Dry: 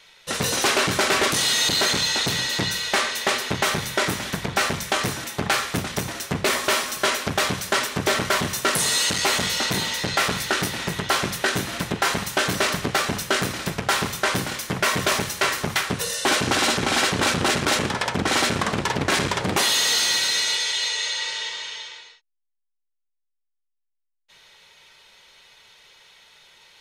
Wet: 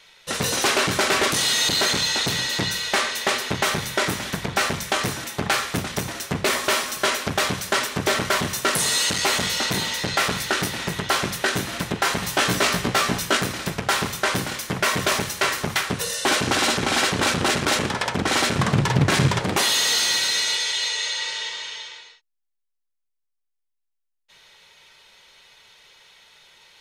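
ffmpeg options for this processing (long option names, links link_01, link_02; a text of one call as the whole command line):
ffmpeg -i in.wav -filter_complex "[0:a]asettb=1/sr,asplit=3[link_01][link_02][link_03];[link_01]atrim=end=12.214[link_04];[link_02]atrim=start=12.21:end=13.37,asetpts=PTS-STARTPTS,afade=type=in:duration=0.004:curve=qsin,afade=type=out:start_time=1.156:duration=0.004:curve=qsin,asplit=2[link_05][link_06];[link_06]adelay=17,volume=-2dB[link_07];[link_05][link_07]amix=inputs=2:normalize=0,atrim=end_sample=51156[link_08];[link_03]atrim=start=13.366[link_09];[link_04][link_08]acrossfade=duration=0.004:curve1=hsin:curve2=qsin[link_10];[link_10][link_09]acrossfade=duration=0.004:curve1=qsin:curve2=hsin,asettb=1/sr,asplit=3[link_11][link_12][link_13];[link_11]atrim=end=18.584[link_14];[link_12]atrim=start=18.58:end=19.39,asetpts=PTS-STARTPTS,afade=type=in:duration=0.004:curve=qsin,afade=type=out:start_time=0.806:duration=0.004:curve=qsin,equalizer=frequency=130:width=1.5:gain=14[link_15];[link_13]atrim=start=19.386[link_16];[link_14][link_15]acrossfade=duration=0.004:curve1=hsin:curve2=qsin[link_17];[link_17][link_16]acrossfade=duration=0.004:curve1=qsin:curve2=hsin" out.wav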